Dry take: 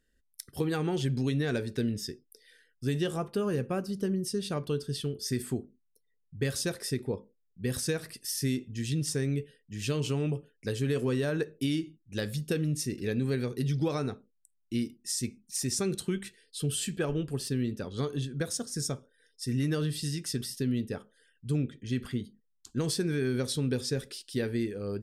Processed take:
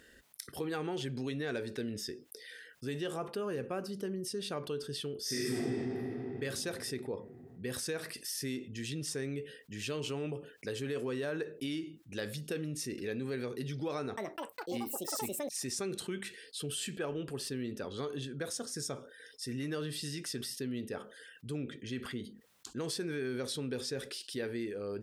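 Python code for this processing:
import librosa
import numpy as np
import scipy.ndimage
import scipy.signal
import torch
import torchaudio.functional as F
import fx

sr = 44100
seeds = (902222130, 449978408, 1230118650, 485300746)

y = fx.reverb_throw(x, sr, start_s=5.21, length_s=1.15, rt60_s=2.7, drr_db=-10.5)
y = fx.echo_pitch(y, sr, ms=204, semitones=7, count=3, db_per_echo=-3.0, at=(13.97, 15.94))
y = scipy.signal.sosfilt(scipy.signal.butter(2, 47.0, 'highpass', fs=sr, output='sos'), y)
y = fx.bass_treble(y, sr, bass_db=-11, treble_db=-5)
y = fx.env_flatten(y, sr, amount_pct=50)
y = y * librosa.db_to_amplitude(-6.5)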